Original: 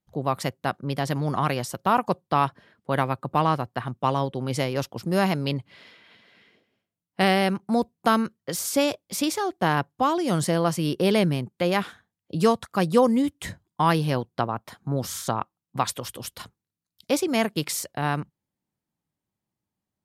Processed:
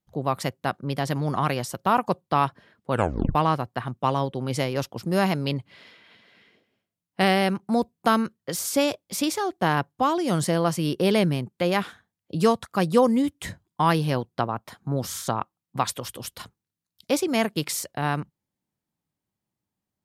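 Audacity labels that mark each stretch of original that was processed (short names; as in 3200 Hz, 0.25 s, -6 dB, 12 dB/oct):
2.910000	2.910000	tape stop 0.44 s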